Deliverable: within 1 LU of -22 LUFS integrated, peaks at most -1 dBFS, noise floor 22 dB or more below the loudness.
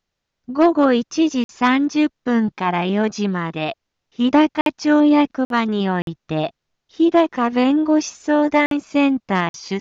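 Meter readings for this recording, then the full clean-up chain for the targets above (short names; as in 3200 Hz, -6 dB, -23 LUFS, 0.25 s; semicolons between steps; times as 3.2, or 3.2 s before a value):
dropouts 6; longest dropout 52 ms; loudness -18.5 LUFS; peak -6.5 dBFS; loudness target -22.0 LUFS
-> interpolate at 1.44/4.61/5.45/6.02/8.66/9.49, 52 ms; gain -3.5 dB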